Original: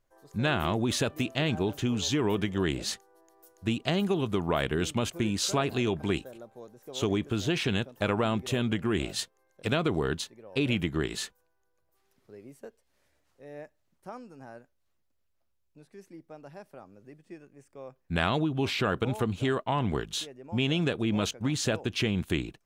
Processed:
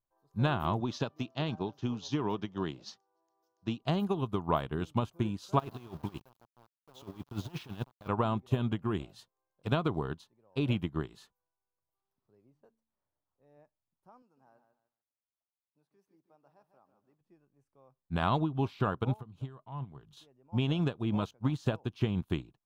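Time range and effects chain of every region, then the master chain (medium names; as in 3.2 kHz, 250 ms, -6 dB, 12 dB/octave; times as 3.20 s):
0.80–3.82 s: high-pass 130 Hz + resonant high shelf 7.5 kHz -11.5 dB, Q 3
5.59–8.08 s: compressor with a negative ratio -30 dBFS, ratio -0.5 + small samples zeroed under -36 dBFS
12.50–13.57 s: de-hum 74.91 Hz, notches 4 + level-controlled noise filter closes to 1.2 kHz, open at -44.5 dBFS
14.22–17.21 s: high-pass 350 Hz 6 dB/octave + bit-crushed delay 149 ms, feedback 35%, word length 11-bit, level -8 dB
19.15–20.17 s: compression 3:1, threshold -36 dBFS + peaking EQ 140 Hz +8.5 dB 0.33 oct
whole clip: ten-band graphic EQ 125 Hz +5 dB, 500 Hz -3 dB, 1 kHz +8 dB, 2 kHz -9 dB, 8 kHz -9 dB; upward expansion 2.5:1, over -34 dBFS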